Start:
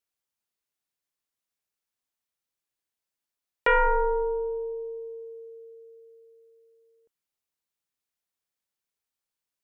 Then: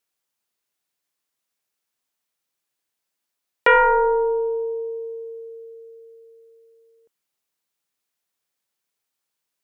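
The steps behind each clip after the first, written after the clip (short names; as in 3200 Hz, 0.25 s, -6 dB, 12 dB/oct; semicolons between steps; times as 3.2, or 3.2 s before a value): HPF 140 Hz 6 dB/oct; gain +7 dB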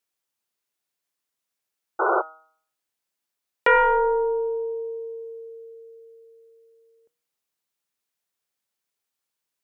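painted sound noise, 1.99–2.22, 330–1500 Hz -18 dBFS; de-hum 158.5 Hz, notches 33; gain -2.5 dB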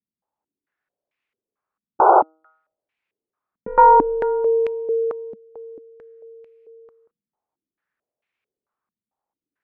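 stepped low-pass 4.5 Hz 210–2400 Hz; gain +2.5 dB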